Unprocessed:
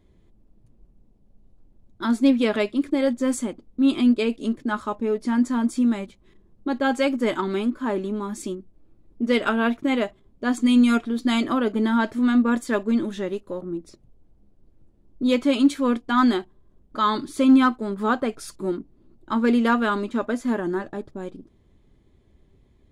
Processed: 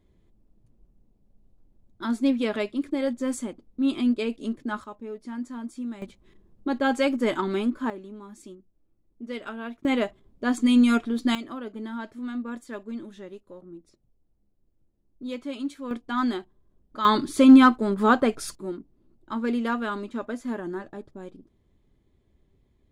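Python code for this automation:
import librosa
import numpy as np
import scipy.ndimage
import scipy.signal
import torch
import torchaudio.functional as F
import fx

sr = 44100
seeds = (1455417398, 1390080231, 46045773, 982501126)

y = fx.gain(x, sr, db=fx.steps((0.0, -5.0), (4.84, -13.0), (6.02, -1.5), (7.9, -14.0), (9.85, -1.5), (11.35, -13.5), (15.91, -7.0), (17.05, 3.0), (18.55, -7.0)))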